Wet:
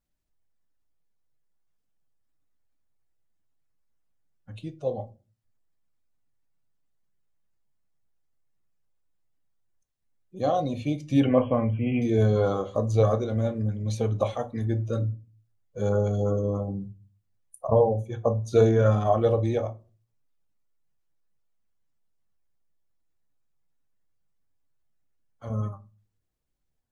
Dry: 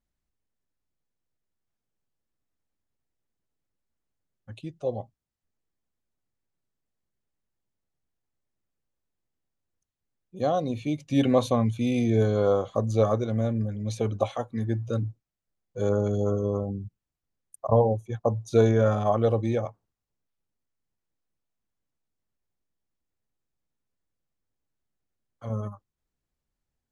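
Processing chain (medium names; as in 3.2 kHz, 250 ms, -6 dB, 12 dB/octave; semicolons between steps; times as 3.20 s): coarse spectral quantiser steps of 15 dB; 11.20–12.02 s: brick-wall FIR low-pass 3.3 kHz; reverberation, pre-delay 6 ms, DRR 8.5 dB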